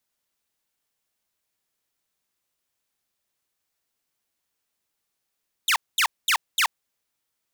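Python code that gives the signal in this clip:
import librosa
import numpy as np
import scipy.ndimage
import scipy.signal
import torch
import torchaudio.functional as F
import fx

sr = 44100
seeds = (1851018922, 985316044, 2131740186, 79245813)

y = fx.laser_zaps(sr, level_db=-15.0, start_hz=4000.0, end_hz=810.0, length_s=0.08, wave='saw', shots=4, gap_s=0.22)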